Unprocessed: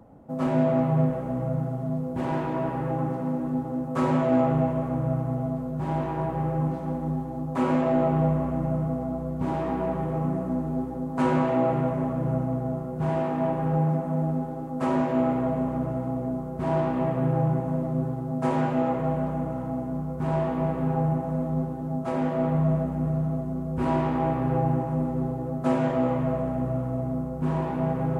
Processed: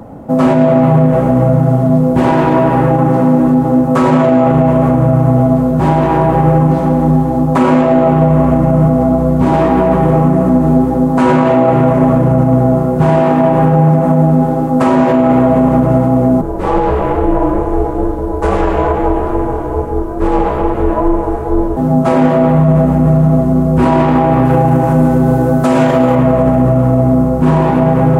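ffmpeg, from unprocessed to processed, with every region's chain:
-filter_complex "[0:a]asettb=1/sr,asplit=3[a][b][c];[a]atrim=end=16.414[d];[b]atrim=start=16.41:end=21.77,asetpts=PTS-STARTPTS,afade=t=in:d=0.004:c=qsin,afade=t=out:st=5.356:d=0.004:c=qsin,flanger=delay=18:depth=4.3:speed=2.3,aeval=exprs='val(0)*sin(2*PI*180*n/s)':c=same[e];[c]atrim=start=21.766[f];[d][e]acrossfade=d=0.004:c1=hsin:c2=qsin[g];[g][f]acrossfade=d=0.004:c1=qsin:c2=hsin,asettb=1/sr,asplit=3[h][i][j];[h]atrim=end=24.454[k];[i]atrim=start=24.45:end=26.15,asetpts=PTS-STARTPTS,afade=t=in:d=0.004:c=qsin,afade=t=out:st=1.696:d=0.004:c=qsin,highshelf=f=3.3k:g=8,aeval=exprs='val(0)+0.00224*sin(2*PI*1500*n/s)':c=same[l];[j]atrim=start=26.146[m];[k][l]acrossfade=d=0.004:c1=hsin:c2=qsin[n];[n][m]acrossfade=d=0.004:c1=qsin:c2=hsin,bandreject=f=50:t=h:w=6,bandreject=f=100:t=h:w=6,bandreject=f=150:t=h:w=6,alimiter=level_in=21dB:limit=-1dB:release=50:level=0:latency=1,volume=-1dB"

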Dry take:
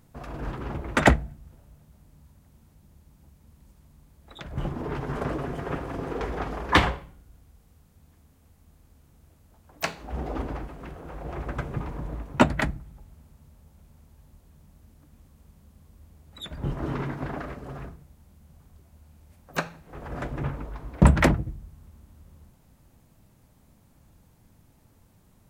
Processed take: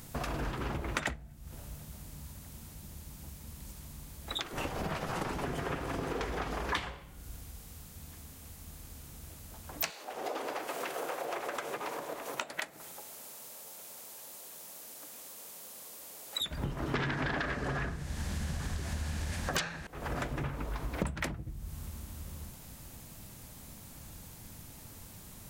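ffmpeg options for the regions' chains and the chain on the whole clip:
-filter_complex "[0:a]asettb=1/sr,asplit=3[a][b][c];[a]atrim=end=4.414[d];[b]atrim=start=4.41:end=5.43,asetpts=PTS-STARTPTS,afade=t=in:d=0.004:c=qsin,afade=t=out:st=1.016:d=0.004:c=qsin,highpass=400,afreqshift=-260[e];[c]atrim=start=5.426[f];[d][e]acrossfade=d=0.004:c1=hsin:c2=qsin[g];[g][f]acrossfade=d=0.004:c1=qsin:c2=hsin,asettb=1/sr,asplit=3[h][i][j];[h]atrim=end=9.904[k];[i]atrim=start=9.9:end=16.41,asetpts=PTS-STARTPTS,afade=t=in:d=0.004:c=qsin,afade=t=out:st=6.506:d=0.004:c=qsin,acompressor=threshold=-38dB:ratio=5:attack=3.2:release=140:knee=1:detection=peak,highpass=f=500:t=q:w=1.5,highshelf=f=4k:g=6[l];[j]atrim=start=16.406[m];[k][l]acrossfade=d=0.004:c1=hsin:c2=qsin[n];[n][m]acrossfade=d=0.004:c1=qsin:c2=hsin,asettb=1/sr,asplit=3[o][p][q];[o]atrim=end=16.944[r];[p]atrim=start=16.94:end=19.87,asetpts=PTS-STARTPTS,afade=t=in:d=0.004:c=qsin,afade=t=out:st=2.926:d=0.004:c=qsin,equalizer=f=1.7k:w=5:g=10,aeval=exprs='0.355*sin(PI/2*6.31*val(0)/0.355)':c=same,lowpass=6.8k[s];[q]atrim=start=19.866[t];[r][s]acrossfade=d=0.004:c1=hsin:c2=qsin[u];[u][t]acrossfade=d=0.004:c1=qsin:c2=hsin,highshelf=f=2.1k:g=11.5,acompressor=threshold=-39dB:ratio=12,volume=7dB"

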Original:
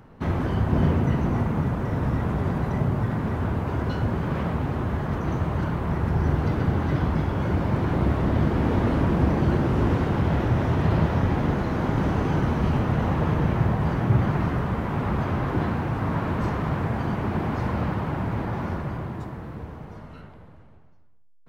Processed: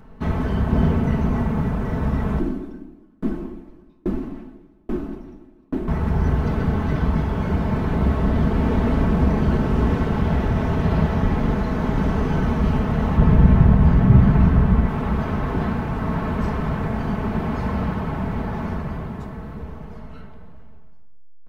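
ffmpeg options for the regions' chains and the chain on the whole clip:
-filter_complex "[0:a]asettb=1/sr,asplit=3[a][b][c];[a]atrim=end=2.394[d];[b]atrim=start=2.39:end=5.88,asetpts=PTS-STARTPTS,afade=t=in:d=0.004:c=qsin,afade=t=out:st=3.486:d=0.004:c=qsin,equalizer=f=98:w=0.6:g=5.5,afreqshift=-430,aeval=exprs='val(0)*pow(10,-38*if(lt(mod(1.2*n/s,1),2*abs(1.2)/1000),1-mod(1.2*n/s,1)/(2*abs(1.2)/1000),(mod(1.2*n/s,1)-2*abs(1.2)/1000)/(1-2*abs(1.2)/1000))/20)':c=same[e];[c]atrim=start=5.876[f];[d][e]acrossfade=d=0.004:c1=hsin:c2=qsin[g];[g][f]acrossfade=d=0.004:c1=qsin:c2=hsin,asettb=1/sr,asplit=3[h][i][j];[h]atrim=end=13.174[k];[i]atrim=start=13.17:end=14.88,asetpts=PTS-STARTPTS,afade=t=in:d=0.004:c=qsin,afade=t=out:st=1.706:d=0.004:c=qsin,bass=f=250:g=8,treble=f=4k:g=-4,asplit=2[l][m];[m]adelay=16,volume=-12dB[n];[l][n]amix=inputs=2:normalize=0,atrim=end_sample=75411[o];[j]atrim=start=14.876[p];[k][o]acrossfade=d=0.004:c1=hsin:c2=qsin[q];[q][p]acrossfade=d=0.004:c1=qsin:c2=hsin,lowshelf=f=69:g=11.5,aecho=1:1:4.6:0.53"

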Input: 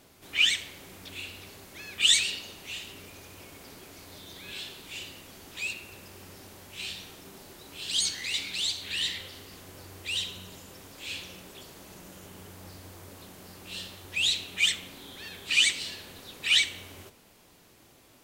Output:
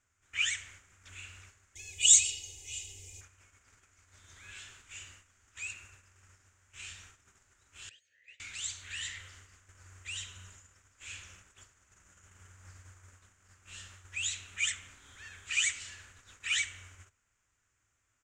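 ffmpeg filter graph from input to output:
-filter_complex "[0:a]asettb=1/sr,asplit=3[a][b][c];[a]atrim=end=1.754[d];[b]atrim=start=1.75:end=3.21,asetpts=PTS-STARTPTS,afade=t=in:d=0.004:c=qsin,afade=t=out:st=1.456:d=0.004:c=qsin,asuperstop=centerf=1400:order=4:qfactor=0.68,highshelf=f=3.7k:g=7,aecho=1:1:2.4:0.96,atrim=end_sample=64386[e];[c]atrim=start=3.206[f];[d][e]acrossfade=d=0.004:c1=hsin:c2=qsin[g];[g][f]acrossfade=d=0.004:c1=qsin:c2=hsin,asettb=1/sr,asplit=3[h][i][j];[h]atrim=end=7.894[k];[i]atrim=start=7.89:end=8.4,asetpts=PTS-STARTPTS,afade=t=in:d=0.004:c=qsin,afade=t=out:st=0.506:d=0.004:c=qsin,lowshelf=f=190:g=10,acompressor=threshold=-29dB:ratio=6:attack=3.2:release=140:knee=1:detection=peak,asplit=3[l][m][n];[l]bandpass=f=530:t=q:w=8,volume=0dB[o];[m]bandpass=f=1.84k:t=q:w=8,volume=-6dB[p];[n]bandpass=f=2.48k:t=q:w=8,volume=-9dB[q];[o][p][q]amix=inputs=3:normalize=0[r];[j]atrim=start=8.396[s];[k][r]acrossfade=d=0.004:c1=hsin:c2=qsin[t];[t][s]acrossfade=d=0.004:c1=qsin:c2=hsin,agate=range=-12dB:threshold=-46dB:ratio=16:detection=peak,firequalizer=gain_entry='entry(100,0);entry(150,-15);entry(340,-17);entry(810,-13);entry(1400,2);entry(4200,-16);entry(7000,5);entry(11000,-23)':delay=0.05:min_phase=1,volume=-2dB"

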